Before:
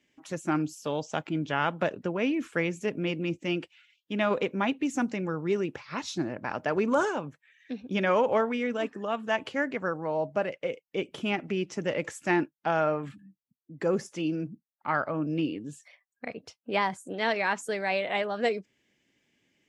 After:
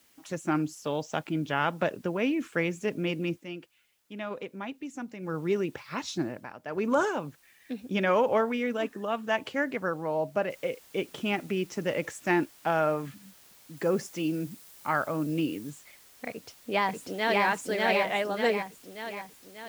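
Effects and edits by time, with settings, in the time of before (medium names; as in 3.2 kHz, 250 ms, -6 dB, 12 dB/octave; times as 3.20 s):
3.29–5.35 s: dip -10 dB, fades 0.16 s
6.24–6.92 s: dip -12.5 dB, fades 0.28 s
10.50 s: noise floor step -64 dB -56 dB
13.77–15.70 s: treble shelf 7.1 kHz +5.5 dB
16.29–17.44 s: echo throw 590 ms, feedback 55%, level -0.5 dB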